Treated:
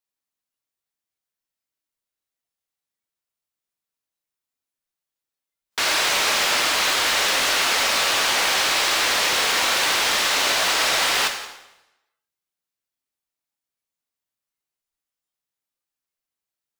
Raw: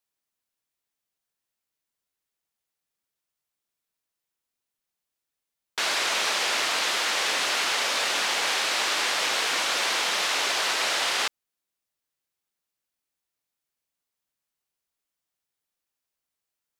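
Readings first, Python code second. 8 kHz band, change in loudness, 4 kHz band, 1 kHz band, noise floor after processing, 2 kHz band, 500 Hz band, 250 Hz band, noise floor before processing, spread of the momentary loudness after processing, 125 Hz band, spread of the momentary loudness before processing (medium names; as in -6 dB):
+6.0 dB, +5.5 dB, +5.0 dB, +5.0 dB, under -85 dBFS, +5.0 dB, +5.5 dB, +6.5 dB, under -85 dBFS, 3 LU, no reading, 1 LU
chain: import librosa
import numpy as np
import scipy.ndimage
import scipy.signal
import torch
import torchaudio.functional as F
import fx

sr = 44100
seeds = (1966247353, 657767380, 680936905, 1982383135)

p1 = x + 10.0 ** (-21.0 / 20.0) * np.pad(x, (int(178 * sr / 1000.0), 0))[:len(x)]
p2 = (np.mod(10.0 ** (21.5 / 20.0) * p1 + 1.0, 2.0) - 1.0) / 10.0 ** (21.5 / 20.0)
p3 = p1 + F.gain(torch.from_numpy(p2), -8.5).numpy()
p4 = fx.rev_plate(p3, sr, seeds[0], rt60_s=0.94, hf_ratio=0.9, predelay_ms=0, drr_db=3.5)
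p5 = fx.noise_reduce_blind(p4, sr, reduce_db=10)
y = F.gain(torch.from_numpy(p5), 2.5).numpy()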